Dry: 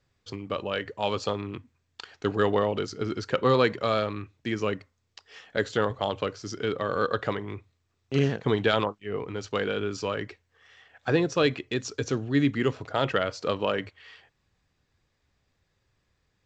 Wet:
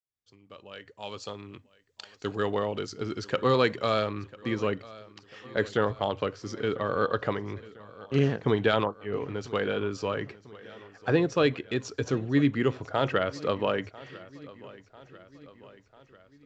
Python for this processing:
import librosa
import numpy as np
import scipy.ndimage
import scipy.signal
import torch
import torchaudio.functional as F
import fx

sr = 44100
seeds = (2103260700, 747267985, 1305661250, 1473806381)

y = fx.fade_in_head(x, sr, length_s=4.32)
y = fx.high_shelf(y, sr, hz=3700.0, db=fx.steps((0.0, 9.0), (2.37, 3.0), (4.08, -7.0)))
y = fx.echo_feedback(y, sr, ms=995, feedback_pct=56, wet_db=-20)